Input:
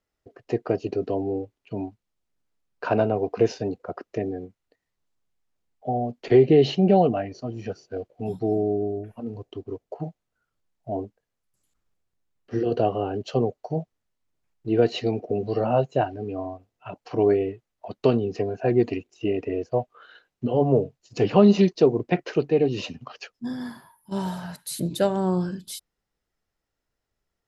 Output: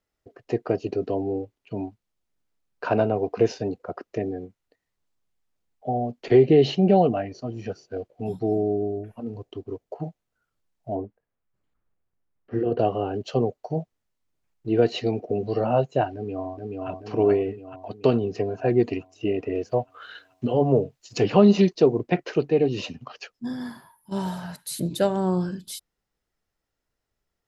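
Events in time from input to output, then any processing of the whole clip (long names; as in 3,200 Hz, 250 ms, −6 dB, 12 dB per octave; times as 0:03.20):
0:10.95–0:12.79: low-pass filter 2,000 Hz
0:16.14–0:16.89: delay throw 430 ms, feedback 60%, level −2 dB
0:19.55–0:21.75: one half of a high-frequency compander encoder only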